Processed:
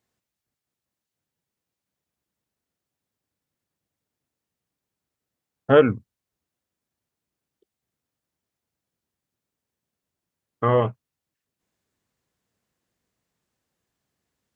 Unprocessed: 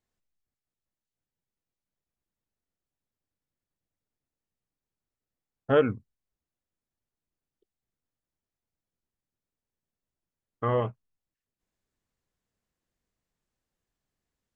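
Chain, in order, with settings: HPF 80 Hz; gain +7 dB

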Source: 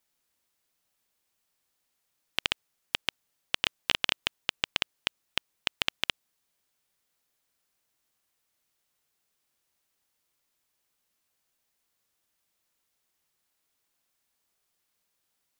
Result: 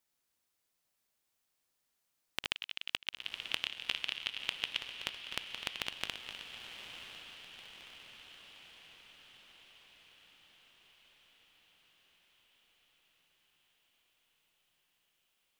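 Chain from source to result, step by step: regenerating reverse delay 0.127 s, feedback 63%, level -10 dB; 2.51–4.8 bell 2900 Hz +12.5 dB 1.6 oct; compressor 6:1, threshold -28 dBFS, peak gain reduction 18 dB; diffused feedback echo 1.02 s, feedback 62%, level -9 dB; gain -4.5 dB

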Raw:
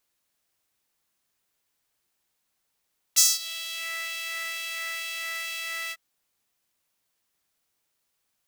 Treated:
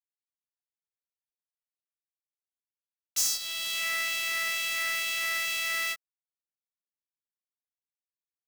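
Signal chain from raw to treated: vocal rider within 4 dB 0.5 s; companded quantiser 4-bit; soft clip -17.5 dBFS, distortion -14 dB

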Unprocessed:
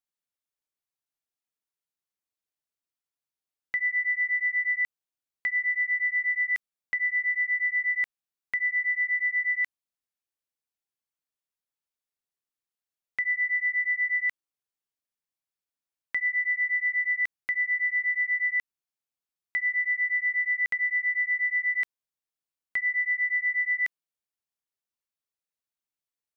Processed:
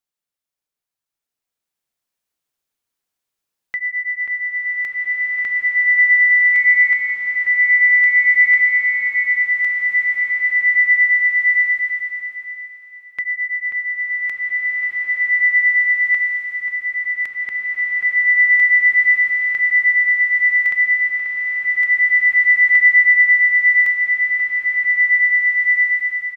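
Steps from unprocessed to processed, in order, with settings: 6.53–7.14 whine 2200 Hz -32 dBFS; outdoor echo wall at 92 m, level -7 dB; bloom reverb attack 2 s, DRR -5.5 dB; gain +4 dB

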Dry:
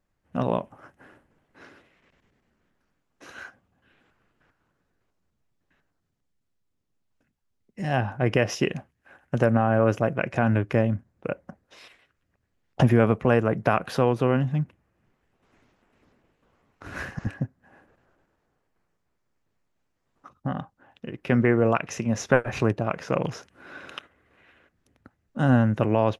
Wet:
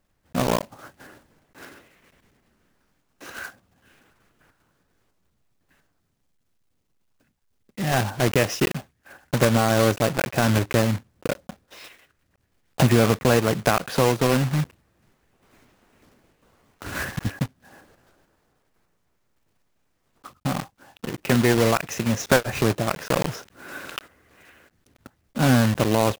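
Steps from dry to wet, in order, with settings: block floating point 3-bit; in parallel at -1.5 dB: compressor, threshold -31 dBFS, peak gain reduction 17 dB

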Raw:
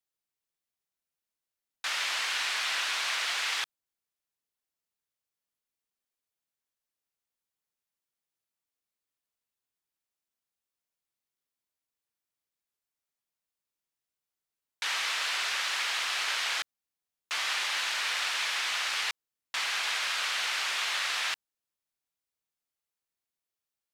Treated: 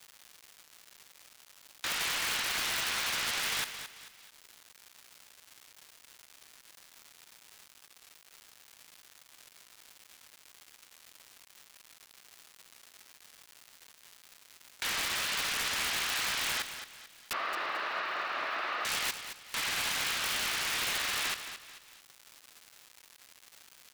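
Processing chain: limiter -23 dBFS, peak gain reduction 5 dB; wrapped overs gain 25 dB; 17.33–18.85 speaker cabinet 340–3400 Hz, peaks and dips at 350 Hz +4 dB, 630 Hz +8 dB, 1200 Hz +8 dB, 2300 Hz -5 dB, 3300 Hz -9 dB; on a send: feedback echo 0.22 s, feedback 31%, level -10 dB; on the sum: crackle 400/s -48 dBFS; mismatched tape noise reduction encoder only

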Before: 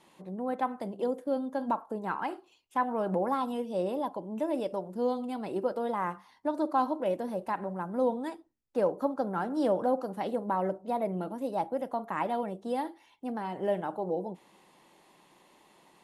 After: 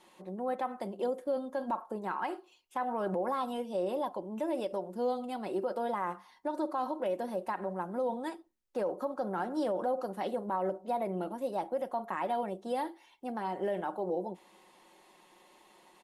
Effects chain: bell 140 Hz -11 dB 1 oct; comb 5.5 ms, depth 40%; limiter -24 dBFS, peak gain reduction 9.5 dB

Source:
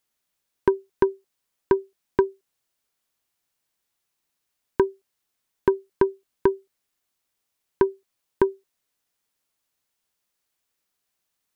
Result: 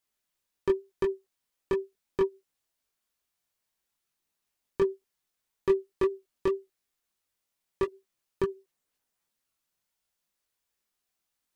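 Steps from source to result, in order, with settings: 4.82–7.86 dynamic EQ 370 Hz, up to +3 dB, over -29 dBFS, Q 3.7; overloaded stage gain 15.5 dB; chorus voices 6, 0.93 Hz, delay 21 ms, depth 3 ms; gain -1 dB

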